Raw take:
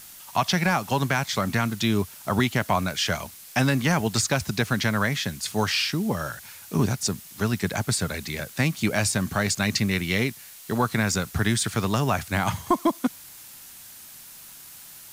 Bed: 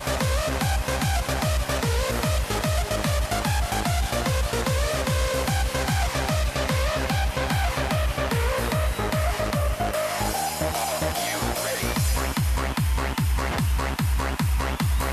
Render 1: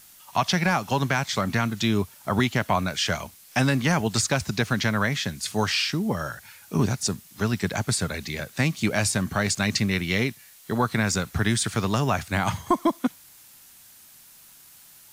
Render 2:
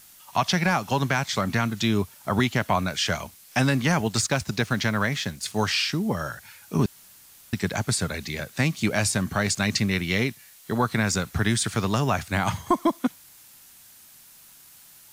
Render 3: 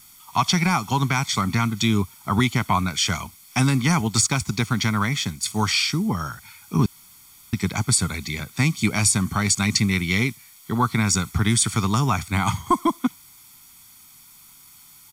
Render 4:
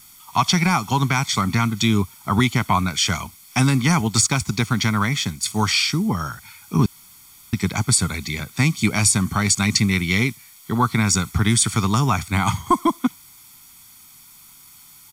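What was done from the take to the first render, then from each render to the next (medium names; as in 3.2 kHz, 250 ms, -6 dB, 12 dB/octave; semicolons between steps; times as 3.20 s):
noise print and reduce 6 dB
4.05–5.60 s: companding laws mixed up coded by A; 6.86–7.53 s: room tone
comb 0.9 ms, depth 71%; dynamic bell 8.5 kHz, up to +6 dB, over -41 dBFS, Q 1
trim +2 dB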